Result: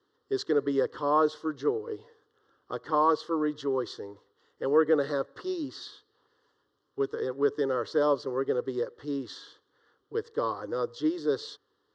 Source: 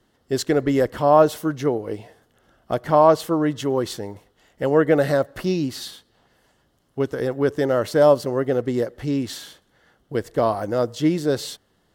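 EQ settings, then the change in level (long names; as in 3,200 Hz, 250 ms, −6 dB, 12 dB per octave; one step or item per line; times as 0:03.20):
loudspeaker in its box 210–4,400 Hz, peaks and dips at 240 Hz −8 dB, 350 Hz −7 dB, 530 Hz −3 dB, 850 Hz −10 dB, 1,500 Hz −5 dB, 2,200 Hz −7 dB
phaser with its sweep stopped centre 660 Hz, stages 6
0.0 dB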